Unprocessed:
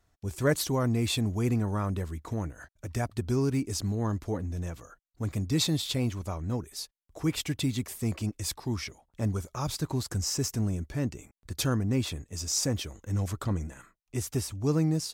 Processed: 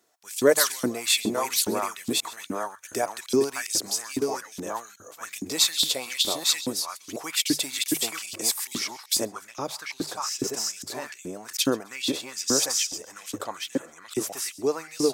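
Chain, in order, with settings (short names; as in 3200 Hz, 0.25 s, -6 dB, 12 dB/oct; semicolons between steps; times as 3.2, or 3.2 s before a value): reverse delay 0.551 s, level -2 dB; HPF 97 Hz; low shelf 300 Hz +6 dB; notches 50/100/150 Hz; thinning echo 0.131 s, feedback 27%, high-pass 910 Hz, level -19 dB; LFO high-pass saw up 2.4 Hz 270–3900 Hz; high shelf 3700 Hz +11 dB, from 9.25 s -2 dB, from 10.53 s +4.5 dB; gain +1 dB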